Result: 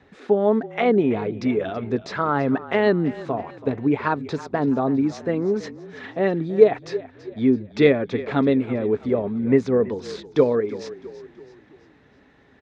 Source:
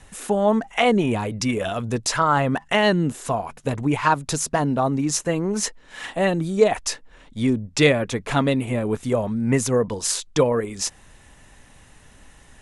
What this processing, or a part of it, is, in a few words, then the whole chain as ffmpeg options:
frequency-shifting delay pedal into a guitar cabinet: -filter_complex "[0:a]asplit=5[s0][s1][s2][s3][s4];[s1]adelay=329,afreqshift=-34,volume=0.15[s5];[s2]adelay=658,afreqshift=-68,volume=0.0716[s6];[s3]adelay=987,afreqshift=-102,volume=0.0343[s7];[s4]adelay=1316,afreqshift=-136,volume=0.0166[s8];[s0][s5][s6][s7][s8]amix=inputs=5:normalize=0,highpass=110,equalizer=f=270:t=q:w=4:g=6,equalizer=f=410:t=q:w=4:g=9,equalizer=f=1000:t=q:w=4:g=-4,equalizer=f=2900:t=q:w=4:g=-9,lowpass=f=3800:w=0.5412,lowpass=f=3800:w=1.3066,volume=0.708"

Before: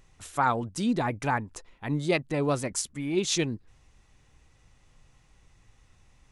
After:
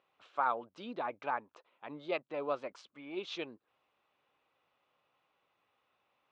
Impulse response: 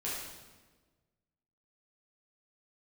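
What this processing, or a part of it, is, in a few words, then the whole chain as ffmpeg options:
phone earpiece: -af "highpass=470,equalizer=f=580:t=q:w=4:g=4,equalizer=f=1200:t=q:w=4:g=4,equalizer=f=1900:t=q:w=4:g=-8,lowpass=f=3400:w=0.5412,lowpass=f=3400:w=1.3066,volume=0.422"

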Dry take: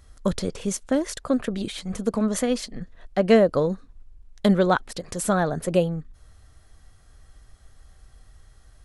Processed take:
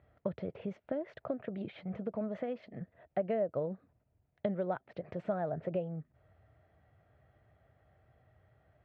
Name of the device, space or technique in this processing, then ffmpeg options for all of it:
bass amplifier: -af "acompressor=threshold=0.0398:ratio=4,highpass=f=88:w=0.5412,highpass=f=88:w=1.3066,equalizer=f=130:t=q:w=4:g=4,equalizer=f=250:t=q:w=4:g=-4,equalizer=f=640:t=q:w=4:g=9,equalizer=f=1100:t=q:w=4:g=-7,equalizer=f=1600:t=q:w=4:g=-4,lowpass=f=2300:w=0.5412,lowpass=f=2300:w=1.3066,volume=0.473"

